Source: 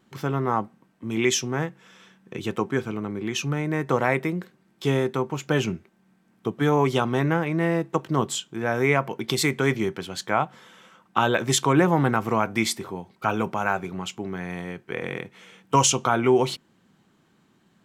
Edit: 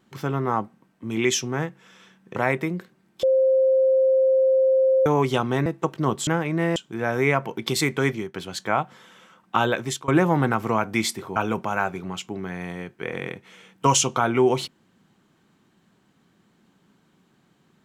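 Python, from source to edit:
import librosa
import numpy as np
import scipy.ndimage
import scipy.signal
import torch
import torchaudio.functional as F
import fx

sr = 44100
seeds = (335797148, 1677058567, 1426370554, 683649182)

y = fx.edit(x, sr, fx.cut(start_s=2.36, length_s=1.62),
    fx.bleep(start_s=4.85, length_s=1.83, hz=527.0, db=-15.0),
    fx.move(start_s=7.28, length_s=0.49, to_s=8.38),
    fx.fade_out_to(start_s=9.67, length_s=0.29, floor_db=-13.0),
    fx.fade_out_to(start_s=11.29, length_s=0.41, floor_db=-21.5),
    fx.cut(start_s=12.98, length_s=0.27), tone=tone)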